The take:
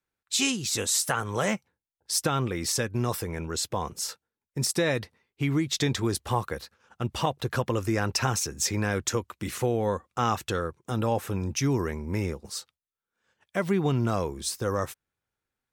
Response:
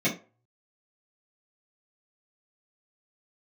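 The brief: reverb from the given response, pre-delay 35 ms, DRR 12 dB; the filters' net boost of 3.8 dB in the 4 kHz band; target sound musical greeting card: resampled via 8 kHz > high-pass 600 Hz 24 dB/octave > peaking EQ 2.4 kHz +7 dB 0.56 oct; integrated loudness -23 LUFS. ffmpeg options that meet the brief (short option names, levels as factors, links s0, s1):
-filter_complex "[0:a]equalizer=f=4000:t=o:g=3.5,asplit=2[s0][s1];[1:a]atrim=start_sample=2205,adelay=35[s2];[s1][s2]afir=irnorm=-1:irlink=0,volume=0.0596[s3];[s0][s3]amix=inputs=2:normalize=0,aresample=8000,aresample=44100,highpass=f=600:w=0.5412,highpass=f=600:w=1.3066,equalizer=f=2400:t=o:w=0.56:g=7,volume=2.66"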